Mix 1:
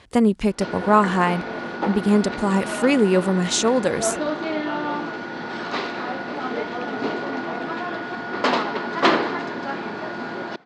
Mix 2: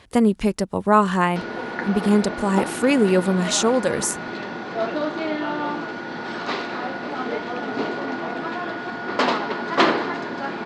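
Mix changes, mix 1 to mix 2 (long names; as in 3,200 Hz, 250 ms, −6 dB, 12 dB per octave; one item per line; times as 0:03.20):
background: entry +0.75 s
master: remove low-pass filter 9,800 Hz 12 dB per octave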